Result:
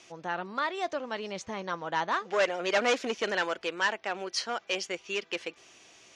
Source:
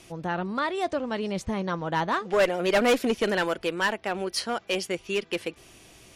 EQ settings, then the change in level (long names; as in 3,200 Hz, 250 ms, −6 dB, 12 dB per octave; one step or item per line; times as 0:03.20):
high-pass filter 770 Hz 6 dB per octave
high-frequency loss of the air 110 metres
parametric band 6,400 Hz +8.5 dB 0.54 octaves
0.0 dB